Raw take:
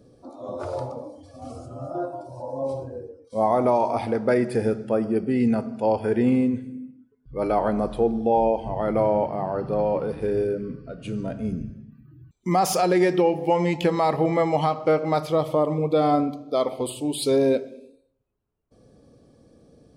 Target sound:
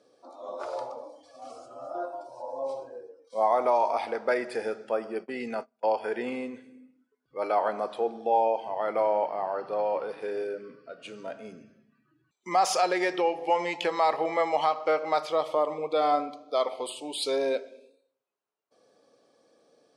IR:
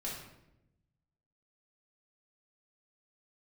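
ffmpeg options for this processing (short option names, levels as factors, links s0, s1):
-filter_complex "[0:a]asplit=3[s0][s1][s2];[s0]afade=t=out:st=5.15:d=0.02[s3];[s1]agate=range=0.0282:threshold=0.0562:ratio=16:detection=peak,afade=t=in:st=5.15:d=0.02,afade=t=out:st=5.83:d=0.02[s4];[s2]afade=t=in:st=5.83:d=0.02[s5];[s3][s4][s5]amix=inputs=3:normalize=0,highpass=640,lowpass=7300"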